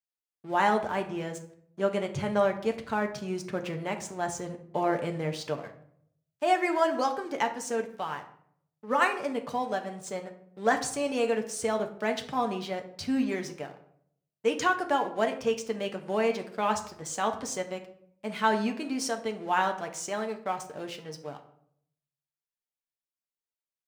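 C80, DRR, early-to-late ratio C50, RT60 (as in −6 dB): 14.5 dB, 4.0 dB, 11.5 dB, 0.65 s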